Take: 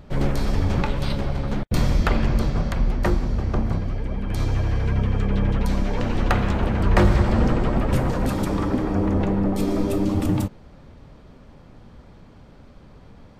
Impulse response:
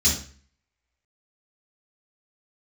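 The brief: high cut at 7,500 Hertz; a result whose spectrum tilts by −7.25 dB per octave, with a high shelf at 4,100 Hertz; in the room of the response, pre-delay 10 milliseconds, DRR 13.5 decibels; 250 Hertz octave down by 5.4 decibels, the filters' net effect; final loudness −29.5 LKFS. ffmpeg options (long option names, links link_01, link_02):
-filter_complex "[0:a]lowpass=7500,equalizer=frequency=250:width_type=o:gain=-7.5,highshelf=frequency=4100:gain=-5,asplit=2[link_01][link_02];[1:a]atrim=start_sample=2205,adelay=10[link_03];[link_02][link_03]afir=irnorm=-1:irlink=0,volume=-26dB[link_04];[link_01][link_04]amix=inputs=2:normalize=0,volume=-6.5dB"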